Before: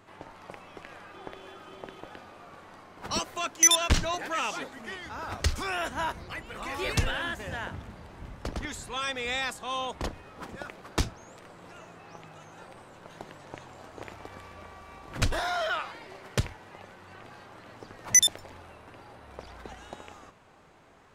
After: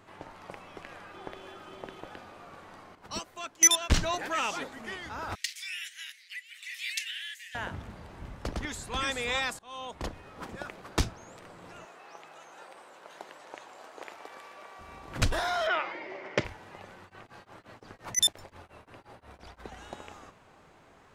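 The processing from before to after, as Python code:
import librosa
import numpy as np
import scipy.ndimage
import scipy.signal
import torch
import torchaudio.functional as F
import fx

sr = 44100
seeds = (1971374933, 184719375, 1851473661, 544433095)

y = fx.upward_expand(x, sr, threshold_db=-36.0, expansion=1.5, at=(2.95, 3.92))
y = fx.cheby1_highpass(y, sr, hz=1900.0, order=5, at=(5.35, 7.55))
y = fx.echo_throw(y, sr, start_s=8.53, length_s=0.48, ms=380, feedback_pct=15, wet_db=-3.0)
y = fx.highpass(y, sr, hz=440.0, slope=12, at=(11.85, 14.79))
y = fx.cabinet(y, sr, low_hz=200.0, low_slope=12, high_hz=5500.0, hz=(340.0, 580.0, 900.0, 2100.0, 4100.0), db=(9, 7, 3, 10, -7), at=(15.67, 16.45))
y = fx.tremolo_abs(y, sr, hz=5.7, at=(17.04, 19.71), fade=0.02)
y = fx.edit(y, sr, fx.fade_in_from(start_s=9.59, length_s=0.93, curve='qsin', floor_db=-22.5), tone=tone)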